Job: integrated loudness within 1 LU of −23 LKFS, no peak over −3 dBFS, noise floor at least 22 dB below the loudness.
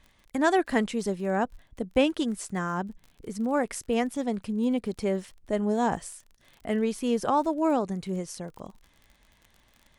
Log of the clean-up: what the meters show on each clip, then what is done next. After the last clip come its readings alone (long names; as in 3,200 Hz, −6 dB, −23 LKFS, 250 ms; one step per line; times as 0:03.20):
crackle rate 38 per second; integrated loudness −28.0 LKFS; sample peak −9.5 dBFS; target loudness −23.0 LKFS
→ click removal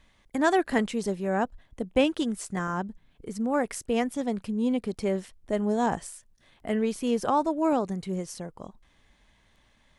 crackle rate 0.20 per second; integrated loudness −28.0 LKFS; sample peak −9.5 dBFS; target loudness −23.0 LKFS
→ level +5 dB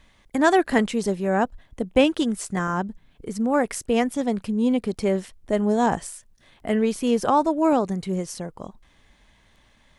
integrated loudness −23.0 LKFS; sample peak −4.5 dBFS; background noise floor −59 dBFS